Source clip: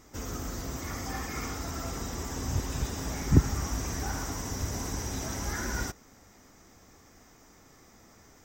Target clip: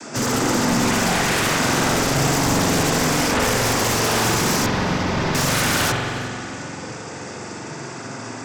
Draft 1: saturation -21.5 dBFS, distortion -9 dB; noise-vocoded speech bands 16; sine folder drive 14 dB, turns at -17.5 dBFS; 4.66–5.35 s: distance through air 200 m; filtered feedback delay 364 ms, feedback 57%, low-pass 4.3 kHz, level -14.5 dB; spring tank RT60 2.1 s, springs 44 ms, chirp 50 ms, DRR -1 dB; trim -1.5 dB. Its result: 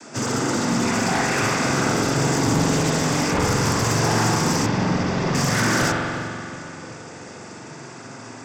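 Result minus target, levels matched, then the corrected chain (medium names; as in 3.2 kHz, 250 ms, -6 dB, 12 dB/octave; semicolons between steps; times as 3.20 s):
sine folder: distortion -9 dB
saturation -21.5 dBFS, distortion -9 dB; noise-vocoded speech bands 16; sine folder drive 20 dB, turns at -17.5 dBFS; 4.66–5.35 s: distance through air 200 m; filtered feedback delay 364 ms, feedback 57%, low-pass 4.3 kHz, level -14.5 dB; spring tank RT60 2.1 s, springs 44 ms, chirp 50 ms, DRR -1 dB; trim -1.5 dB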